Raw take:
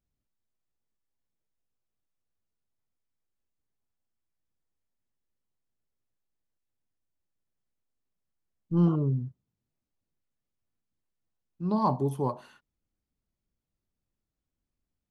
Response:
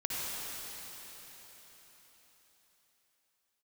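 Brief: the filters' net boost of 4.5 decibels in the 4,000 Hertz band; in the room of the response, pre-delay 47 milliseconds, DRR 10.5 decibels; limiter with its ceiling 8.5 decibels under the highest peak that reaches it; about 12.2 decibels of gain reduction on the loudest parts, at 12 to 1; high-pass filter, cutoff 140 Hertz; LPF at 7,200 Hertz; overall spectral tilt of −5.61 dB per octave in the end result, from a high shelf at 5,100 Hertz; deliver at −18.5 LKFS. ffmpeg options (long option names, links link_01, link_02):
-filter_complex "[0:a]highpass=140,lowpass=7200,equalizer=frequency=4000:width_type=o:gain=8.5,highshelf=frequency=5100:gain=-6,acompressor=threshold=-32dB:ratio=12,alimiter=level_in=9dB:limit=-24dB:level=0:latency=1,volume=-9dB,asplit=2[link_01][link_02];[1:a]atrim=start_sample=2205,adelay=47[link_03];[link_02][link_03]afir=irnorm=-1:irlink=0,volume=-16.5dB[link_04];[link_01][link_04]amix=inputs=2:normalize=0,volume=25.5dB"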